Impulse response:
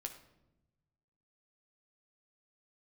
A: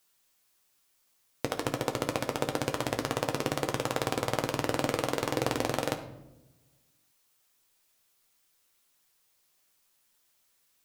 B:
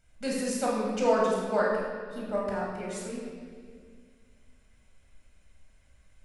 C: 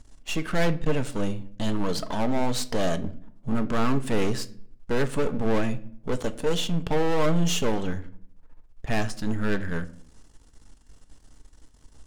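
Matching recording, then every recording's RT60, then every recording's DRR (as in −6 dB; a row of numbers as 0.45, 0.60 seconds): A; 0.95, 2.0, 0.55 seconds; 4.0, −4.5, 9.0 decibels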